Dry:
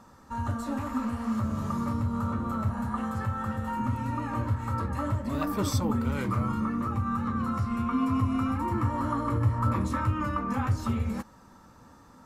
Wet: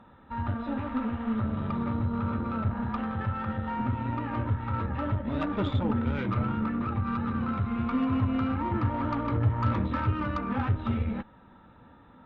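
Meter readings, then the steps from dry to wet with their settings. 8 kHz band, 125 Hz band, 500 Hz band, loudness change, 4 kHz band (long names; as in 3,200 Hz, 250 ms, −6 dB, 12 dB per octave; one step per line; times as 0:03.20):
below −25 dB, 0.0 dB, +1.0 dB, 0.0 dB, −1.5 dB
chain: linear-phase brick-wall low-pass 4,000 Hz
harmonic generator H 8 −26 dB, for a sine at −13.5 dBFS
notch filter 1,100 Hz, Q 7.3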